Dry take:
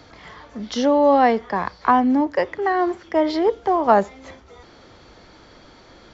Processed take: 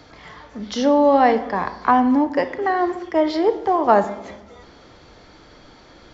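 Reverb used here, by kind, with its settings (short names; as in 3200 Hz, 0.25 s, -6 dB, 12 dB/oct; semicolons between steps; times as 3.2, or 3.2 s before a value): shoebox room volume 460 m³, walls mixed, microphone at 0.42 m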